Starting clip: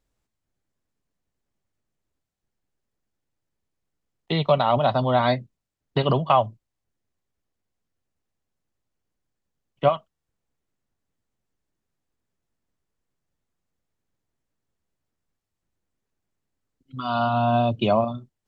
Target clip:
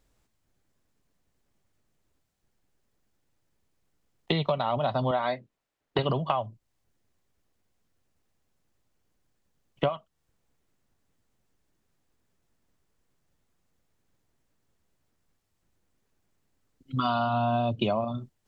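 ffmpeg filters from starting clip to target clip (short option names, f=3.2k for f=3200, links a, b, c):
-filter_complex "[0:a]asettb=1/sr,asplit=3[a][b][c];[a]atrim=end=5.114[d];[b]atrim=start=5.11:end=5.99,asetpts=PTS-STARTPTS,afade=t=in:d=0.004:c=qsin,afade=t=out:st=0.876:d=0.004:c=qsin,bass=f=250:g=-14,treble=f=4k:g=-8[e];[c]atrim=start=5.986[f];[d][e]acrossfade=d=0.004:c1=hsin:c2=qsin[g];[g][f]acrossfade=d=0.004:c1=qsin:c2=hsin,acompressor=threshold=-30dB:ratio=16,volume=7dB"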